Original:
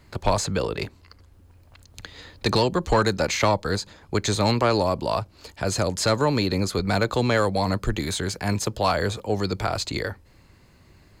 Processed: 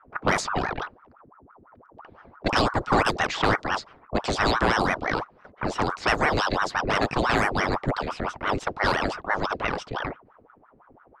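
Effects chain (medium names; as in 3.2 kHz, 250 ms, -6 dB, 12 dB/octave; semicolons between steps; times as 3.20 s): level-controlled noise filter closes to 480 Hz, open at -16 dBFS; ring modulator with a swept carrier 760 Hz, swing 80%, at 5.9 Hz; trim +1.5 dB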